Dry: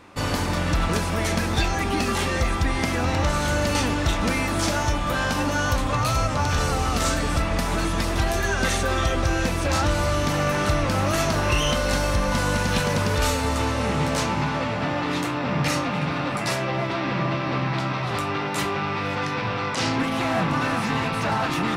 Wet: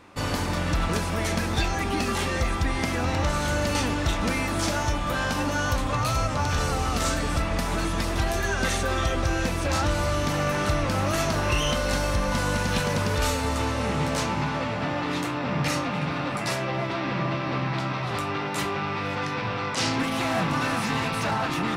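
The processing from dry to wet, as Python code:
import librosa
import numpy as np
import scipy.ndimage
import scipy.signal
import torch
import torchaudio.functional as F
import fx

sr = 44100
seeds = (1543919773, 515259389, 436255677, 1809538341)

y = fx.high_shelf(x, sr, hz=4200.0, db=6.5, at=(19.76, 21.31))
y = y * librosa.db_to_amplitude(-2.5)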